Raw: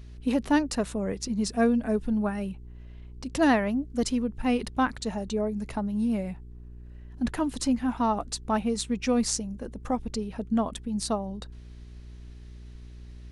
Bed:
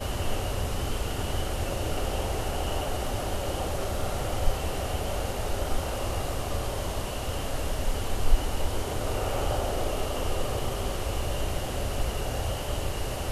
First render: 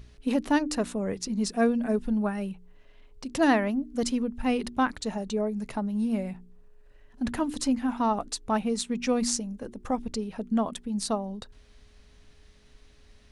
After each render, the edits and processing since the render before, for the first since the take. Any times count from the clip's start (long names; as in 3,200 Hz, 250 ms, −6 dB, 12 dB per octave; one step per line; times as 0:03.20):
hum removal 60 Hz, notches 6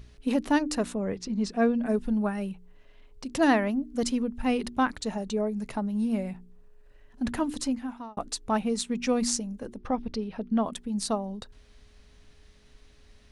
0:00.94–0:01.86: high-frequency loss of the air 96 metres
0:07.50–0:08.17: fade out
0:09.77–0:10.64: Savitzky-Golay smoothing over 15 samples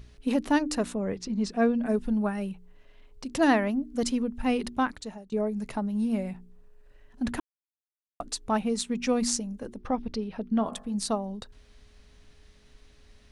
0:04.72–0:05.32: fade out, to −22.5 dB
0:07.40–0:08.20: silence
0:10.55–0:10.95: hum removal 50.89 Hz, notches 35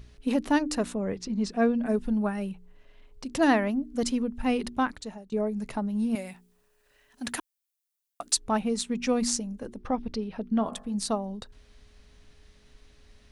0:06.15–0:08.37: spectral tilt +3.5 dB per octave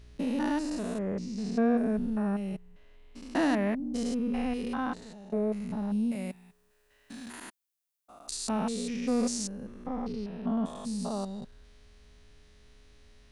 spectrum averaged block by block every 200 ms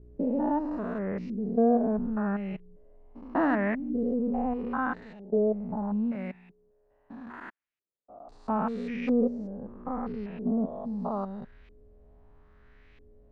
auto-filter low-pass saw up 0.77 Hz 370–2,500 Hz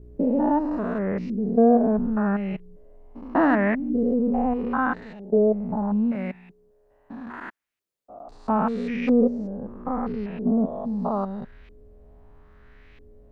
level +6 dB